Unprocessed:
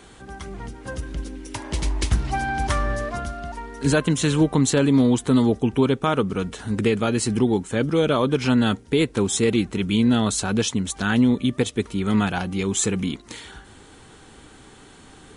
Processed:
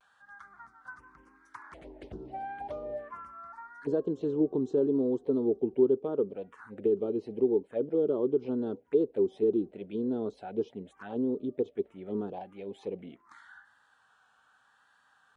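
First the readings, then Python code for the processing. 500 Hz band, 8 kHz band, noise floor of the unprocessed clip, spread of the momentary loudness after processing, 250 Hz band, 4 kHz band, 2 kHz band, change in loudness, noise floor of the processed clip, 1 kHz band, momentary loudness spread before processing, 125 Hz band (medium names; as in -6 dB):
-4.0 dB, under -40 dB, -48 dBFS, 19 LU, -11.5 dB, under -30 dB, under -20 dB, -9.0 dB, -67 dBFS, -15.0 dB, 15 LU, -22.0 dB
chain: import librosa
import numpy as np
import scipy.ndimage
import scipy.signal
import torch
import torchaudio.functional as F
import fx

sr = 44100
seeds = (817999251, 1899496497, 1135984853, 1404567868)

y = fx.env_phaser(x, sr, low_hz=330.0, high_hz=2200.0, full_db=-16.5)
y = fx.auto_wah(y, sr, base_hz=400.0, top_hz=1800.0, q=4.4, full_db=-18.0, direction='down')
y = fx.vibrato(y, sr, rate_hz=0.82, depth_cents=56.0)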